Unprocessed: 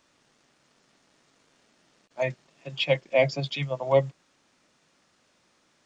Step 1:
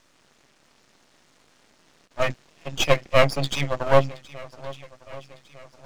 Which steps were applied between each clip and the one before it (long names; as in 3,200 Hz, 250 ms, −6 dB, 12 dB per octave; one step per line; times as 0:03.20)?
feedback echo with a long and a short gap by turns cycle 1,204 ms, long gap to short 1.5 to 1, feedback 42%, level −19.5 dB
half-wave rectification
level +8.5 dB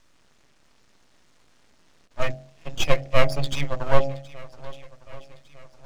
low-shelf EQ 93 Hz +11.5 dB
hum removal 45.67 Hz, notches 18
level −3.5 dB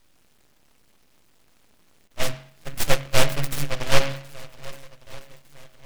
short delay modulated by noise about 1,800 Hz, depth 0.22 ms